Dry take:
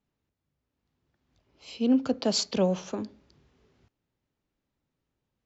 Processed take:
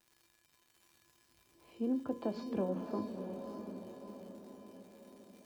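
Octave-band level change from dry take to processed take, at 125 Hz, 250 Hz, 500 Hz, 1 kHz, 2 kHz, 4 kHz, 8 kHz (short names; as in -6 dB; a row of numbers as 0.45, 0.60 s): -9.5 dB, -9.0 dB, -8.5 dB, -7.0 dB, -12.5 dB, -25.0 dB, n/a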